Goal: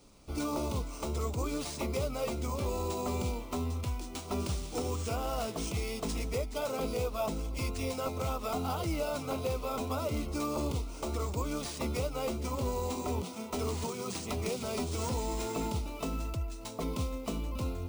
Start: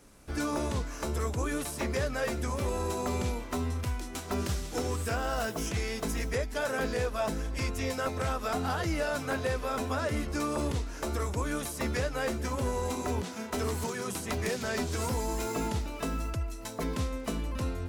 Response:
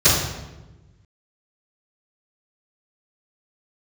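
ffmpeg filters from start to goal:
-af "asuperstop=centerf=1700:order=4:qfactor=2.1,acrusher=samples=3:mix=1:aa=0.000001,volume=0.794"

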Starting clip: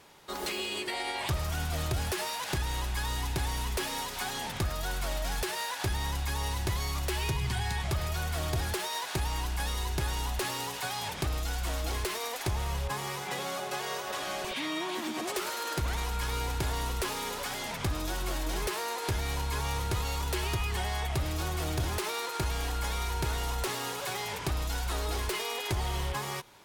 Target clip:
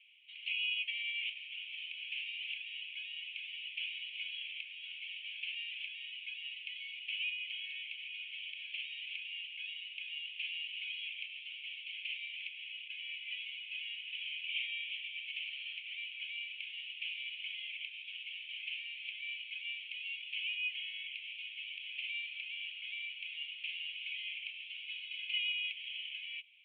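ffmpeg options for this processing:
-filter_complex "[0:a]asuperpass=centerf=2700:order=8:qfactor=2.9,asettb=1/sr,asplit=3[s0][s1][s2];[s0]atrim=end=24.834[s3];[s1]atrim=start=24.83:end=25.52,asetpts=PTS-STARTPTS,afade=t=in:d=0.004:c=qsin,afade=t=out:st=0.686:d=0.004:c=qsin,aecho=1:1:2.4:0.55,atrim=end_sample=30429[s4];[s2]atrim=start=25.516[s5];[s3][s4]acrossfade=d=0.004:c1=hsin:c2=qsin[s6];[s6][s5]acrossfade=d=0.004:c1=qsin:c2=hsin,volume=1.58"

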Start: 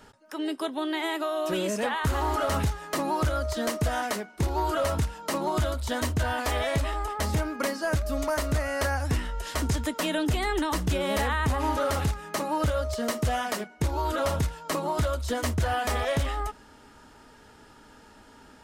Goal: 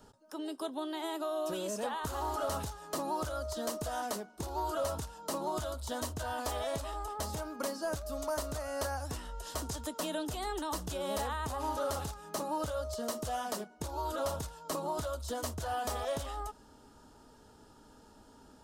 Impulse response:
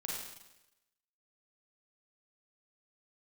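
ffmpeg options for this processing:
-filter_complex "[0:a]equalizer=f=2100:w=1.4:g=-13.5,acrossover=split=510|6400[s0][s1][s2];[s0]acompressor=threshold=0.0158:ratio=6[s3];[s3][s1][s2]amix=inputs=3:normalize=0,volume=0.631"

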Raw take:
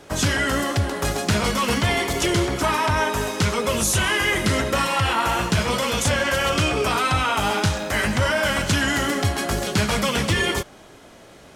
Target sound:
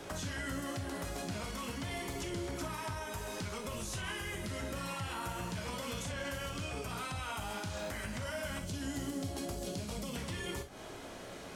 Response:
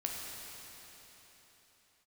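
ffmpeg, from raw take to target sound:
-filter_complex "[0:a]asettb=1/sr,asplit=3[s0][s1][s2];[s0]atrim=end=8.604[s3];[s1]atrim=start=8.6:end=10.16,asetpts=PTS-STARTPTS,afade=t=in:d=0.004:c=qsin,afade=t=out:st=1.556:d=0.004:c=qsin,equalizer=f=1600:w=0.7:g=-13[s4];[s2]atrim=start=10.156[s5];[s3][s4]acrossfade=d=0.004:c1=hsin:c2=qsin[s6];[s6][s5]acrossfade=d=0.004:c1=qsin:c2=hsin,acrossover=split=210|6100[s7][s8][s9];[s7]acompressor=threshold=0.0355:ratio=4[s10];[s8]acompressor=threshold=0.0251:ratio=4[s11];[s9]acompressor=threshold=0.00891:ratio=4[s12];[s10][s11][s12]amix=inputs=3:normalize=0,alimiter=limit=0.075:level=0:latency=1:release=140,acompressor=threshold=0.00794:ratio=2,asettb=1/sr,asplit=3[s13][s14][s15];[s13]atrim=end=3.364[s16];[s14]atrim=start=3.36:end=4.21,asetpts=PTS-STARTPTS,afade=t=in:d=0.004:c=qsin,afade=t=out:st=0.846:d=0.004:c=qsin,aeval=exprs='0.0447*(cos(1*acos(clip(val(0)/0.0447,-1,1)))-cos(1*PI/2))+0.000501*(cos(8*acos(clip(val(0)/0.0447,-1,1)))-cos(8*PI/2))':c=same[s17];[s15]atrim=start=4.206[s18];[s16][s17]acrossfade=d=0.004:c1=hsin:c2=qsin[s19];[s19][s18]acrossfade=d=0.004:c1=qsin:c2=hsin[s20];[1:a]atrim=start_sample=2205,atrim=end_sample=3087[s21];[s20][s21]afir=irnorm=-1:irlink=0"

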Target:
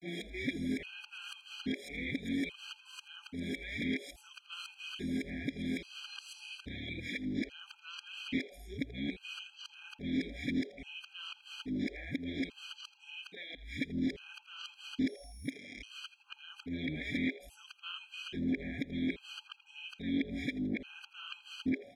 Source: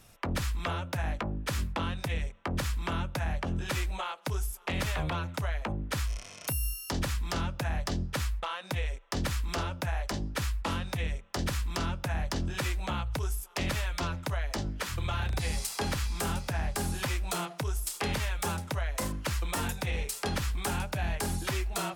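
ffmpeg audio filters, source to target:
-filter_complex "[0:a]areverse,alimiter=level_in=1.58:limit=0.0631:level=0:latency=1:release=238,volume=0.631,asplit=3[s0][s1][s2];[s0]bandpass=f=270:t=q:w=8,volume=1[s3];[s1]bandpass=f=2290:t=q:w=8,volume=0.501[s4];[s2]bandpass=f=3010:t=q:w=8,volume=0.355[s5];[s3][s4][s5]amix=inputs=3:normalize=0,asplit=2[s6][s7];[s7]asplit=4[s8][s9][s10][s11];[s8]adelay=82,afreqshift=150,volume=0.126[s12];[s9]adelay=164,afreqshift=300,volume=0.0556[s13];[s10]adelay=246,afreqshift=450,volume=0.0243[s14];[s11]adelay=328,afreqshift=600,volume=0.0107[s15];[s12][s13][s14][s15]amix=inputs=4:normalize=0[s16];[s6][s16]amix=inputs=2:normalize=0,afftfilt=real='re*gt(sin(2*PI*0.6*pts/sr)*(1-2*mod(floor(b*sr/1024/810),2)),0)':imag='im*gt(sin(2*PI*0.6*pts/sr)*(1-2*mod(floor(b*sr/1024/810),2)),0)':win_size=1024:overlap=0.75,volume=6.31"

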